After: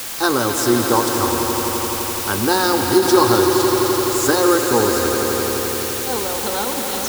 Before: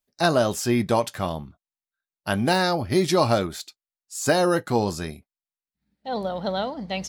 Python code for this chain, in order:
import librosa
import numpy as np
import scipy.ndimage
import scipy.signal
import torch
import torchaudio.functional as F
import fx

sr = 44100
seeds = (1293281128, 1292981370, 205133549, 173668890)

p1 = fx.fixed_phaser(x, sr, hz=640.0, stages=6)
p2 = fx.quant_dither(p1, sr, seeds[0], bits=6, dither='triangular')
p3 = p2 + fx.echo_swell(p2, sr, ms=85, loudest=5, wet_db=-10.0, dry=0)
p4 = fx.end_taper(p3, sr, db_per_s=160.0)
y = p4 * 10.0 ** (7.5 / 20.0)